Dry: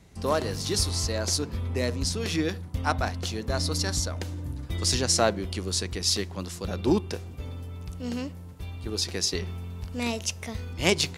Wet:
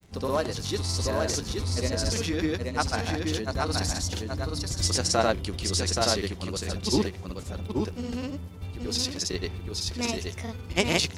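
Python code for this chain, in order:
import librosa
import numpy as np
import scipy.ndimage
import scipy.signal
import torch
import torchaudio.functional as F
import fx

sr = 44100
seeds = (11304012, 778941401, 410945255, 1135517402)

y = fx.granulator(x, sr, seeds[0], grain_ms=100.0, per_s=20.0, spray_ms=100.0, spread_st=0)
y = y + 10.0 ** (-3.5 / 20.0) * np.pad(y, (int(826 * sr / 1000.0), 0))[:len(y)]
y = fx.dmg_crackle(y, sr, seeds[1], per_s=42.0, level_db=-46.0)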